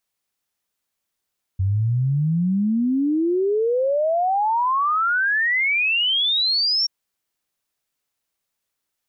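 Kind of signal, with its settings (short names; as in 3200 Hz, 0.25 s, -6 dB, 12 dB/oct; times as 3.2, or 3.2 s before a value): log sweep 92 Hz -> 5600 Hz 5.28 s -17 dBFS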